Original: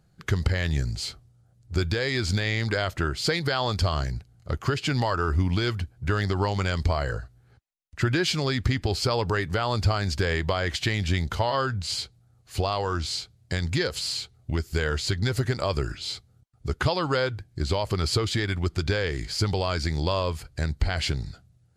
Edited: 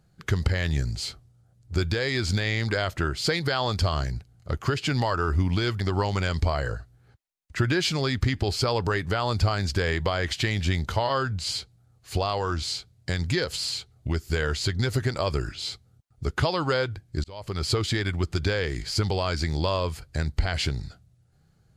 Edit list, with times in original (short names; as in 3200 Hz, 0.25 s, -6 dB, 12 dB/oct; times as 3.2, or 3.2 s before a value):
5.8–6.23 cut
17.67–18.18 fade in